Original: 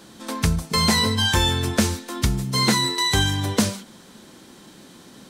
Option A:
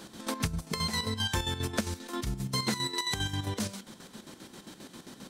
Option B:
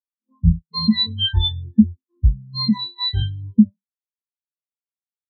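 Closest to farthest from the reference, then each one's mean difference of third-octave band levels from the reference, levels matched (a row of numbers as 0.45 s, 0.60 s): A, B; 5.0 dB, 25.5 dB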